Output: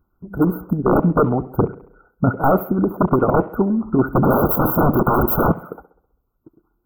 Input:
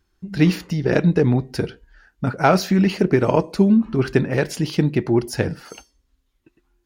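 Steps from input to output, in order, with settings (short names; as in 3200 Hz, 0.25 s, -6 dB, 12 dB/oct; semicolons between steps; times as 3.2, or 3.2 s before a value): 0.61–1.21 dynamic EQ 250 Hz, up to +7 dB, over -31 dBFS, Q 1.6; harmonic-percussive split harmonic -13 dB; 4.23–5.52 sample leveller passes 5; wavefolder -15.5 dBFS; brick-wall FIR band-stop 1500–12000 Hz; tape echo 67 ms, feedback 57%, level -16 dB, low-pass 2500 Hz; gain +8 dB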